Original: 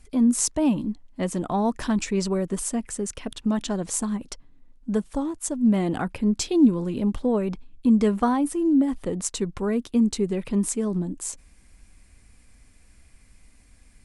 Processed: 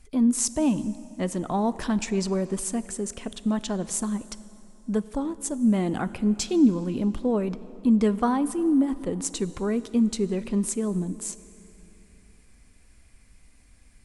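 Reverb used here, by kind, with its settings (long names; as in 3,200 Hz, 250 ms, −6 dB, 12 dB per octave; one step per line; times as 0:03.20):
dense smooth reverb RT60 3.2 s, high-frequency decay 0.75×, DRR 15 dB
level −1.5 dB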